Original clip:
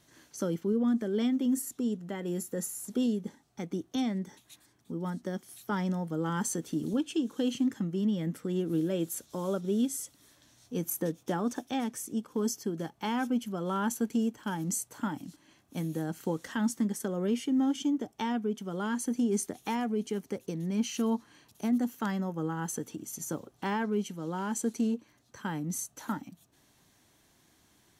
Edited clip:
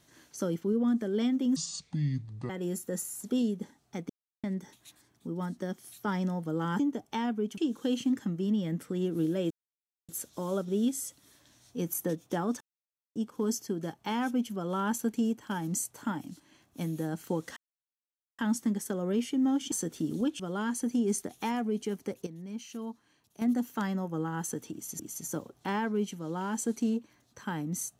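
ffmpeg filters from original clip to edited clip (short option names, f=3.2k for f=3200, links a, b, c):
-filter_complex "[0:a]asplit=16[a][b][c][d][e][f][g][h][i][j][k][l][m][n][o][p];[a]atrim=end=1.564[q];[b]atrim=start=1.56:end=2.14,asetpts=PTS-STARTPTS,asetrate=27342,aresample=44100[r];[c]atrim=start=2.136:end=3.74,asetpts=PTS-STARTPTS,afade=t=out:st=1.6:d=0.004:c=hsin[s];[d]atrim=start=3.74:end=4.08,asetpts=PTS-STARTPTS,volume=0[t];[e]atrim=start=4.08:end=6.442,asetpts=PTS-STARTPTS,afade=t=in:d=0.004:c=hsin[u];[f]atrim=start=17.858:end=18.642[v];[g]atrim=start=7.118:end=9.05,asetpts=PTS-STARTPTS,afade=t=out:st=1.928:d=0.004:c=hsin,apad=pad_dur=0.58[w];[h]atrim=start=9.05:end=11.57,asetpts=PTS-STARTPTS,afade=t=in:d=0.004:c=hsin,afade=t=out:st=2.516:d=0.004:c=hsin[x];[i]atrim=start=11.57:end=12.12,asetpts=PTS-STARTPTS,volume=0[y];[j]atrim=start=12.12:end=16.53,asetpts=PTS-STARTPTS,afade=t=in:d=0.004:c=hsin,afade=t=out:st=4.406:d=0.004:c=hsin,apad=pad_dur=0.82[z];[k]atrim=start=16.53:end=17.862,asetpts=PTS-STARTPTS,afade=t=in:d=0.004:c=hsin[aa];[l]atrim=start=6.438:end=7.122[ab];[m]atrim=start=18.638:end=20.512[ac];[n]atrim=start=20.508:end=21.662,asetpts=PTS-STARTPTS,volume=-10dB[ad];[o]atrim=start=21.658:end=23.242[ae];[p]atrim=start=22.968[af];[q][r]acrossfade=d=0.004:c1=hsin:c2=hsin[ag];[s][t][u]concat=n=3:v=0:a=1[ah];[ag][ah]acrossfade=d=0.004:c1=hsin:c2=hsin[ai];[ai][v]acrossfade=d=0.004:c1=hsin:c2=hsin[aj];[w][x][y][z][aa]concat=n=5:v=0:a=1[ak];[aj][ak]acrossfade=d=0.004:c1=hsin:c2=hsin[al];[al][ab]acrossfade=d=0.004:c1=hsin:c2=hsin[am];[am][ac]acrossfade=d=0.004:c1=hsin:c2=hsin[an];[an][ad]acrossfade=d=0.004:c1=hsin:c2=hsin[ao];[ao][ae]acrossfade=d=0.004:c1=hsin:c2=hsin[ap];[ap][af]acrossfade=d=0.004:c1=hsin:c2=hsin"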